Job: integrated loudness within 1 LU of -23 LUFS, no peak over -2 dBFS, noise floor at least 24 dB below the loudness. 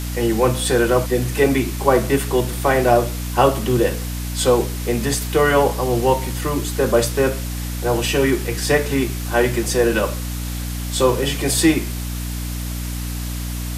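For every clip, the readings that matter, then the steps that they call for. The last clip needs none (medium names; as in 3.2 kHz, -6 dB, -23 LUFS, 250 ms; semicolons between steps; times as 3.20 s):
hum 60 Hz; highest harmonic 300 Hz; hum level -24 dBFS; noise floor -26 dBFS; noise floor target -44 dBFS; loudness -19.5 LUFS; peak level -2.0 dBFS; loudness target -23.0 LUFS
-> de-hum 60 Hz, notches 5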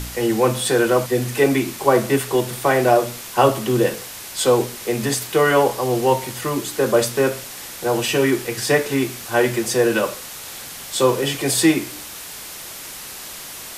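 hum not found; noise floor -35 dBFS; noise floor target -43 dBFS
-> noise reduction 8 dB, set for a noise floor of -35 dBFS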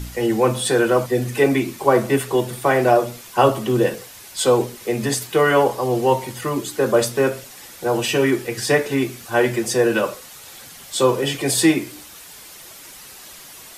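noise floor -41 dBFS; noise floor target -44 dBFS
-> noise reduction 6 dB, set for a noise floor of -41 dBFS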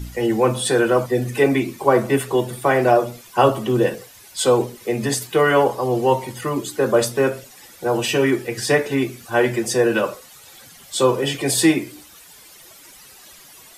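noise floor -46 dBFS; loudness -19.5 LUFS; peak level -1.5 dBFS; loudness target -23.0 LUFS
-> trim -3.5 dB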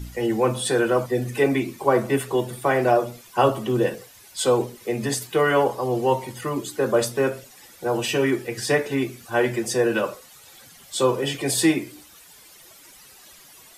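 loudness -23.0 LUFS; peak level -5.0 dBFS; noise floor -49 dBFS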